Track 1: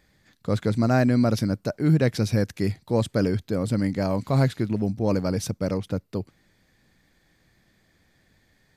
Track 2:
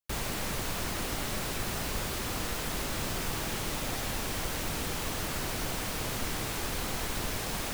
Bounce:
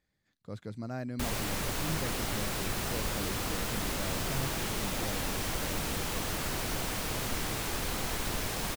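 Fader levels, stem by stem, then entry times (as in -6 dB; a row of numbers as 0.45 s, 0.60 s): -17.5 dB, 0.0 dB; 0.00 s, 1.10 s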